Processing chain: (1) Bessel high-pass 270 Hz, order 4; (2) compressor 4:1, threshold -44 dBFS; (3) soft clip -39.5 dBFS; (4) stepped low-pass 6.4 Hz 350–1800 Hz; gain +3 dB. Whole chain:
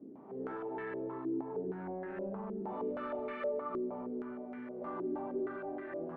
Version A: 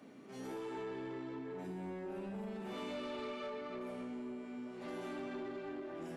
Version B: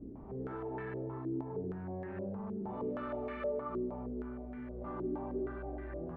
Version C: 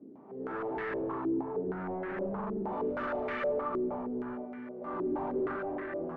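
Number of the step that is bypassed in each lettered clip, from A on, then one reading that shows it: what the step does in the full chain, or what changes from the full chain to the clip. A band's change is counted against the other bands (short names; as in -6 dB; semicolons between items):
4, 125 Hz band +3.5 dB; 1, 125 Hz band +9.5 dB; 2, mean gain reduction 10.0 dB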